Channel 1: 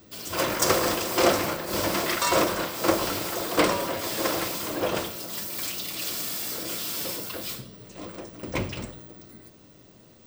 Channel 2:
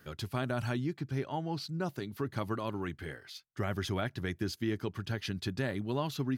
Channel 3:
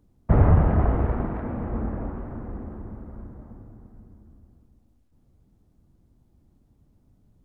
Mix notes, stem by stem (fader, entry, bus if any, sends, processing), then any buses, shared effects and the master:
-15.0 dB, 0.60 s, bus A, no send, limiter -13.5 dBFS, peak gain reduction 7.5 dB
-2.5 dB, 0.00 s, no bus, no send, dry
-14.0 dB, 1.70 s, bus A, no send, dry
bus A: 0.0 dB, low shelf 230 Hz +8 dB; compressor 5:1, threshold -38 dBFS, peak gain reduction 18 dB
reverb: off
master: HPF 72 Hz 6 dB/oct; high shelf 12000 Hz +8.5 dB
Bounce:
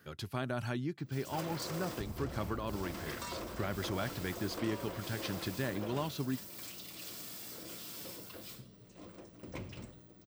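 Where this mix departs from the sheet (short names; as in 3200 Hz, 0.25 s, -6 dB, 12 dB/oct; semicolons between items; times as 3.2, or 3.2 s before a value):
stem 1: entry 0.60 s -> 1.00 s; stem 3 -14.0 dB -> -20.5 dB; master: missing high shelf 12000 Hz +8.5 dB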